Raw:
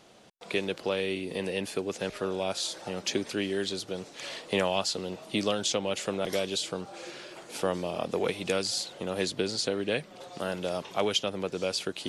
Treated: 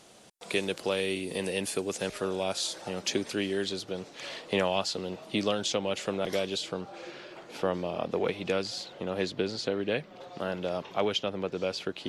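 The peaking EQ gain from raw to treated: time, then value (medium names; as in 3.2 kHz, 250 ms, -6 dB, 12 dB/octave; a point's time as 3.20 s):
peaking EQ 9.5 kHz 1.3 oct
1.90 s +9 dB
2.64 s +1 dB
3.43 s +1 dB
3.86 s -6 dB
6.42 s -6 dB
7.13 s -15 dB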